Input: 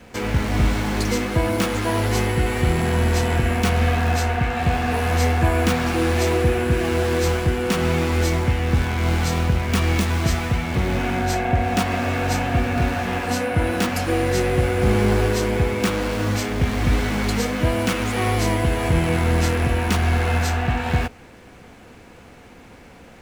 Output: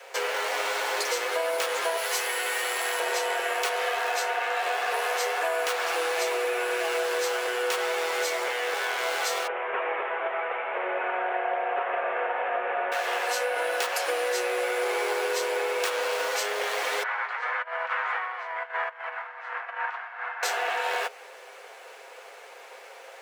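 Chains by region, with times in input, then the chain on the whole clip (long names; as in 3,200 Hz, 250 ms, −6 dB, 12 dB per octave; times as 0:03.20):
0:01.97–0:03.00: high-pass filter 910 Hz 6 dB per octave + high-shelf EQ 8,700 Hz +6 dB
0:09.47–0:12.92: variable-slope delta modulation 16 kbit/s + low-pass filter 2,100 Hz + highs frequency-modulated by the lows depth 0.11 ms
0:17.03–0:20.43: compressor whose output falls as the input rises −23 dBFS, ratio −0.5 + flat-topped band-pass 1,300 Hz, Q 1.2
whole clip: Butterworth high-pass 440 Hz 48 dB per octave; comb filter 7.5 ms, depth 39%; downward compressor, threshold −26 dBFS; level +2 dB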